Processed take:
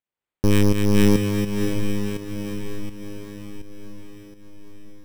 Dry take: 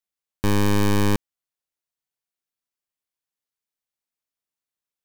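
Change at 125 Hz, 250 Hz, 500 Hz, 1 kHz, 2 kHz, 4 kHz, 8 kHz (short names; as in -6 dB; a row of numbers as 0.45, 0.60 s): +4.0, +5.5, +5.0, -5.0, +0.5, +2.0, +2.5 dB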